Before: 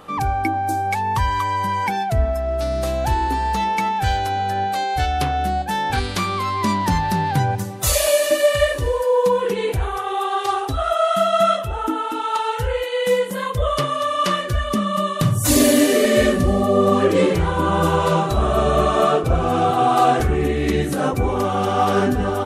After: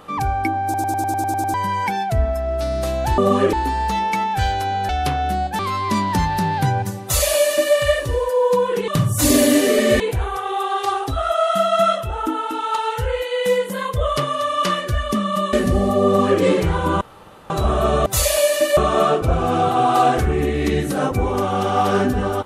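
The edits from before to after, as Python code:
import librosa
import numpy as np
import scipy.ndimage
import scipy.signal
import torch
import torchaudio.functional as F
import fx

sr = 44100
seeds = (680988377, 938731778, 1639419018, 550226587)

y = fx.edit(x, sr, fx.stutter_over(start_s=0.64, slice_s=0.1, count=9),
    fx.cut(start_s=4.54, length_s=0.5),
    fx.cut(start_s=5.74, length_s=0.58),
    fx.duplicate(start_s=7.76, length_s=0.71, to_s=18.79),
    fx.move(start_s=15.14, length_s=1.12, to_s=9.61),
    fx.duplicate(start_s=16.79, length_s=0.35, to_s=3.18),
    fx.room_tone_fill(start_s=17.74, length_s=0.49), tone=tone)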